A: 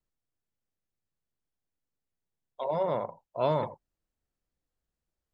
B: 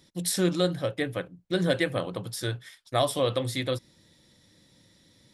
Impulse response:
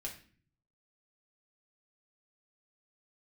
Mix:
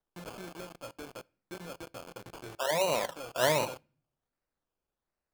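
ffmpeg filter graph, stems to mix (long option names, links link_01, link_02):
-filter_complex "[0:a]acrusher=samples=18:mix=1:aa=0.000001:lfo=1:lforange=10.8:lforate=1.3,volume=1dB,asplit=2[link_01][link_02];[link_02]volume=-19.5dB[link_03];[1:a]acrusher=samples=23:mix=1:aa=0.000001,acompressor=threshold=-31dB:ratio=6,acrusher=bits=5:mix=0:aa=0.000001,volume=-9dB,asplit=2[link_04][link_05];[link_05]volume=-17dB[link_06];[2:a]atrim=start_sample=2205[link_07];[link_03][link_06]amix=inputs=2:normalize=0[link_08];[link_08][link_07]afir=irnorm=-1:irlink=0[link_09];[link_01][link_04][link_09]amix=inputs=3:normalize=0,lowshelf=frequency=210:gain=-9"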